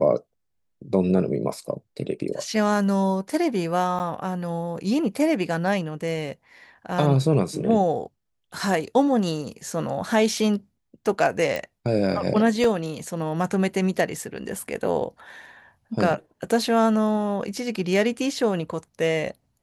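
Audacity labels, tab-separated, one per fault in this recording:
3.990000	4.000000	dropout 8.9 ms
11.560000	11.560000	pop
12.640000	12.640000	dropout 3.1 ms

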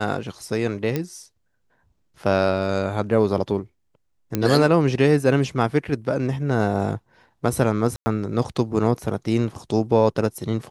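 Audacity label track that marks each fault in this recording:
0.960000	0.960000	pop -11 dBFS
4.350000	4.350000	pop -8 dBFS
7.960000	8.060000	dropout 100 ms

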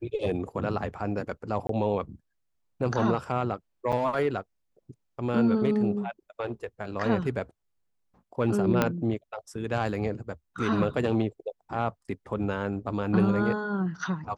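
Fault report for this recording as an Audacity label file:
1.670000	1.690000	dropout 23 ms
3.920000	3.930000	dropout 7.1 ms
8.820000	8.820000	pop -9 dBFS

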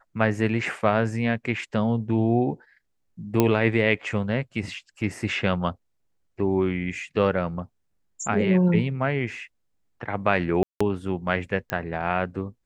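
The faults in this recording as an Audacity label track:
3.400000	3.400000	pop -6 dBFS
10.630000	10.800000	dropout 175 ms
11.700000	11.700000	pop -12 dBFS

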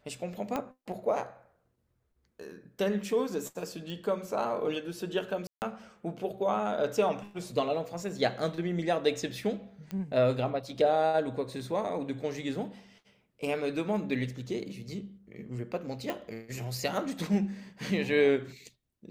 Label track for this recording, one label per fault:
0.560000	0.560000	pop -18 dBFS
3.900000	3.900000	pop
5.470000	5.620000	dropout 149 ms
9.910000	9.910000	pop -24 dBFS
16.100000	16.100000	pop

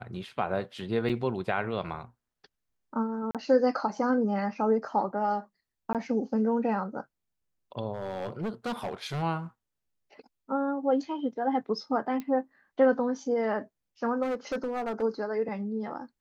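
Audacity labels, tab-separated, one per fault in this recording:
1.090000	1.100000	dropout 6.4 ms
3.310000	3.350000	dropout 37 ms
5.930000	5.950000	dropout 17 ms
7.940000	9.230000	clipped -28.5 dBFS
12.200000	12.200000	pop -23 dBFS
14.220000	15.030000	clipped -27 dBFS

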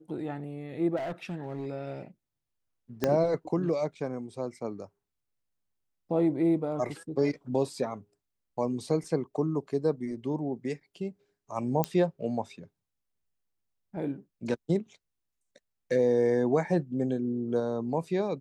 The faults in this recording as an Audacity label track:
0.960000	1.660000	clipped -31 dBFS
3.040000	3.040000	pop -12 dBFS
11.840000	11.840000	pop -12 dBFS

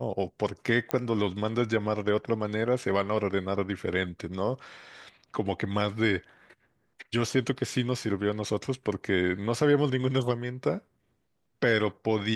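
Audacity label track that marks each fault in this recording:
0.910000	0.910000	pop -13 dBFS

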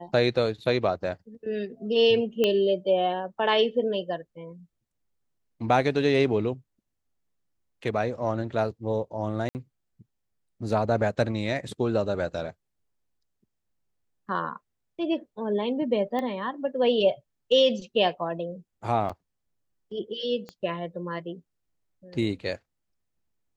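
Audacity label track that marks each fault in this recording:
2.440000	2.440000	pop -11 dBFS
9.490000	9.550000	dropout 59 ms
16.190000	16.190000	pop -19 dBFS
19.090000	19.100000	dropout 5.7 ms
20.490000	20.490000	pop -25 dBFS

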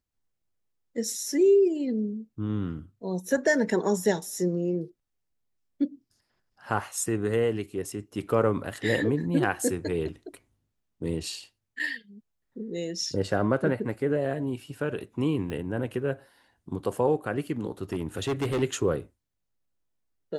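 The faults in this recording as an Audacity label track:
15.500000	15.500000	pop -23 dBFS
17.920000	18.630000	clipped -23.5 dBFS

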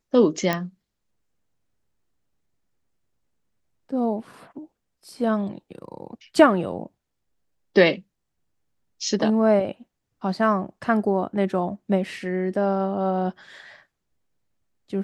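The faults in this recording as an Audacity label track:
0.530000	0.530000	pop -9 dBFS

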